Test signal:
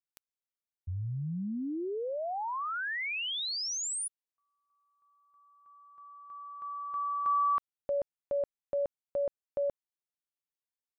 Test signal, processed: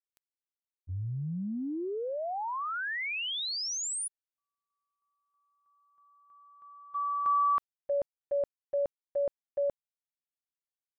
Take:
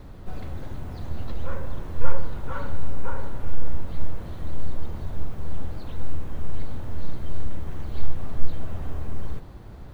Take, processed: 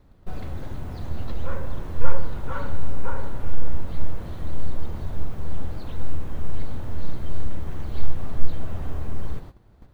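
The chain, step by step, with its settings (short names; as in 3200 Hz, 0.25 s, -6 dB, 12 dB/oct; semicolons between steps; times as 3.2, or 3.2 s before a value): gate -36 dBFS, range -14 dB; gain +1.5 dB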